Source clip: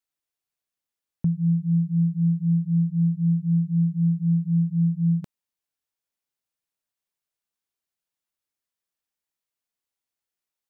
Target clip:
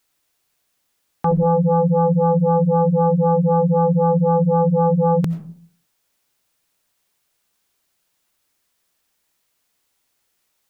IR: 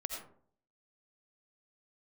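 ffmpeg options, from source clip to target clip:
-filter_complex "[0:a]asplit=2[a][b];[1:a]atrim=start_sample=2205[c];[b][c]afir=irnorm=-1:irlink=0,volume=-8dB[d];[a][d]amix=inputs=2:normalize=0,aeval=exprs='0.224*sin(PI/2*3.98*val(0)/0.224)':c=same"

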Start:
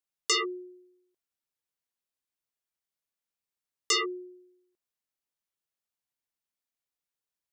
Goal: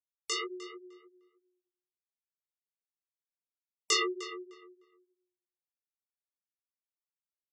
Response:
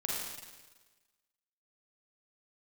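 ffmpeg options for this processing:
-filter_complex "[0:a]afftfilt=real='re*gte(hypot(re,im),0.00224)':imag='im*gte(hypot(re,im),0.00224)':win_size=1024:overlap=0.75,dynaudnorm=f=180:g=7:m=7dB,flanger=delay=16:depth=6.4:speed=1.6,asplit=2[a][b];[b]adelay=304,lowpass=f=2.4k:p=1,volume=-11dB,asplit=2[c][d];[d]adelay=304,lowpass=f=2.4k:p=1,volume=0.22,asplit=2[e][f];[f]adelay=304,lowpass=f=2.4k:p=1,volume=0.22[g];[c][e][g]amix=inputs=3:normalize=0[h];[a][h]amix=inputs=2:normalize=0,volume=-5.5dB"

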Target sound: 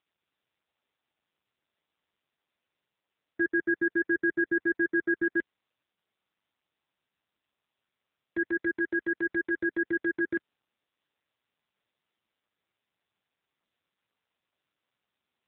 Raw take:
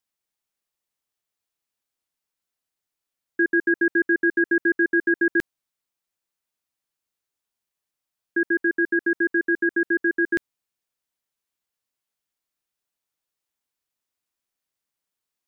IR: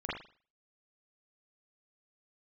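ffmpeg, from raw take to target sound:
-filter_complex "[0:a]asettb=1/sr,asplit=3[a][b][c];[a]atrim=end=8.374[d];[b]atrim=start=8.37:end=9.6,asetpts=PTS-STARTPTS,afade=t=in:d=0.004:c=qsin,afade=t=out:st=1.226:d=0.004:c=qsin,asubboost=boost=4.5:cutoff=130[e];[c]atrim=start=9.596[f];[d][e]acrossfade=d=0.004:c1=hsin:c2=qsin[g];[g][f]acrossfade=d=0.004:c1=qsin:c2=hsin,volume=-5.5dB" -ar 8000 -c:a libopencore_amrnb -b:a 6700

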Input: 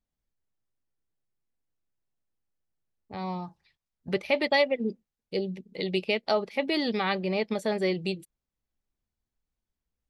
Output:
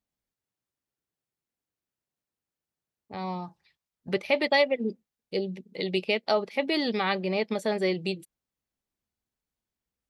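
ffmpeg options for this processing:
-af "highpass=f=130:p=1,volume=1dB"

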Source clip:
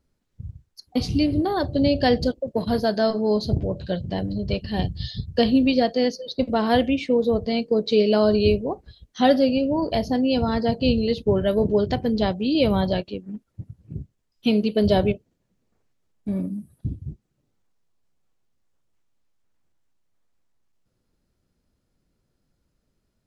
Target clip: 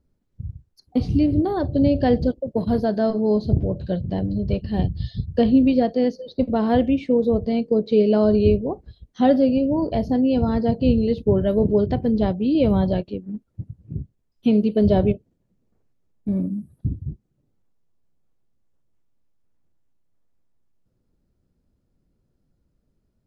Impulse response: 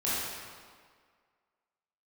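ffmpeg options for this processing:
-filter_complex "[0:a]tiltshelf=f=790:g=6,acrossover=split=3900[a][b];[b]acompressor=threshold=-49dB:ratio=4:attack=1:release=60[c];[a][c]amix=inputs=2:normalize=0,volume=-2dB"

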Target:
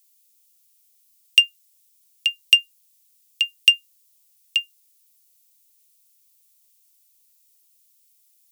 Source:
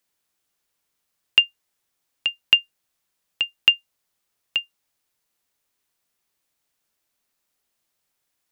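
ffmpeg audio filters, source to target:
-af "aexciter=amount=6.2:drive=4.2:freq=2.1k,asuperstop=centerf=1500:order=4:qfactor=4.1,highshelf=f=6.1k:g=11.5,volume=-13dB"

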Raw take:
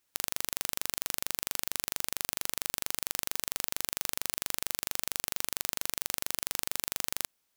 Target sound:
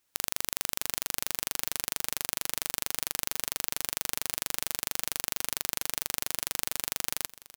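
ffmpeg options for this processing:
-af "aecho=1:1:662|1324:0.119|0.019,volume=1.5dB"

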